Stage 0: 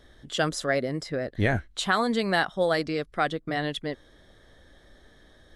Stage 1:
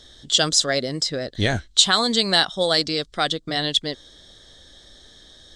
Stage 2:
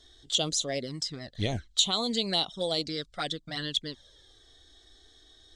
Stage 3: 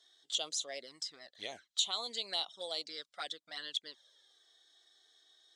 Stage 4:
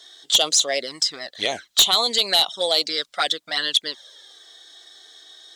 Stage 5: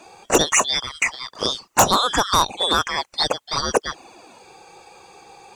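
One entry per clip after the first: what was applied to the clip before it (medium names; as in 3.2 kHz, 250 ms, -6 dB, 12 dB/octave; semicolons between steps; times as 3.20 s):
high-order bell 5.2 kHz +15 dB; trim +2 dB
touch-sensitive flanger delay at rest 2.9 ms, full sweep at -16 dBFS; trim -7 dB
high-pass 660 Hz 12 dB/octave; trim -7.5 dB
sine folder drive 7 dB, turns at -17 dBFS; trim +9 dB
four frequency bands reordered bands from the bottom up 3412; trim +1 dB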